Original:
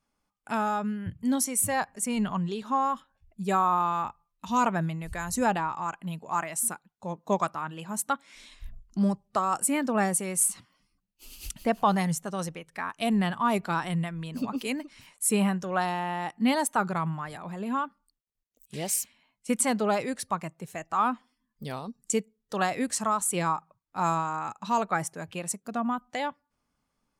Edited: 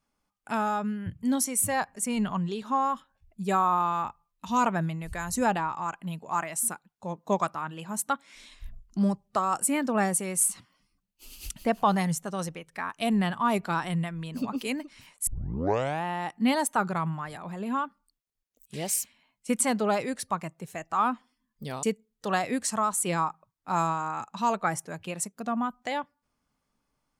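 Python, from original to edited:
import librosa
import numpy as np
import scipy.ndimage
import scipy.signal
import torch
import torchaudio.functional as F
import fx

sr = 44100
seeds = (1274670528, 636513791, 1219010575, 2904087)

y = fx.edit(x, sr, fx.tape_start(start_s=15.27, length_s=0.77),
    fx.cut(start_s=21.83, length_s=0.28), tone=tone)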